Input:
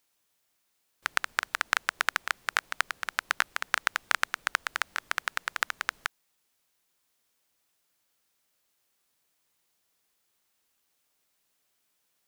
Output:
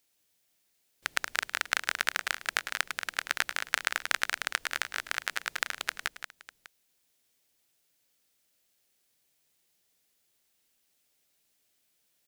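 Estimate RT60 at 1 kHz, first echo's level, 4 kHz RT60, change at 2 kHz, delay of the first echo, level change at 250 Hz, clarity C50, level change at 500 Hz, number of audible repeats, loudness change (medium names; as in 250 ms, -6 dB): no reverb, -16.5 dB, no reverb, -1.0 dB, 106 ms, +1.5 dB, no reverb, 0.0 dB, 3, -1.0 dB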